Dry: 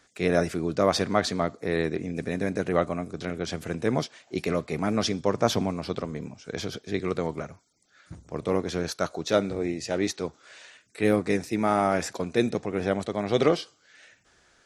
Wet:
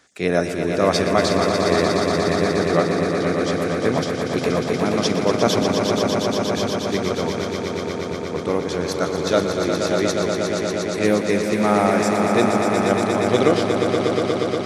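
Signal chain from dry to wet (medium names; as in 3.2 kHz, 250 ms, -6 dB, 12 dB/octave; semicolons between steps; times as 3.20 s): bass shelf 70 Hz -9 dB; echo with a slow build-up 119 ms, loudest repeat 5, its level -7 dB; trim +4 dB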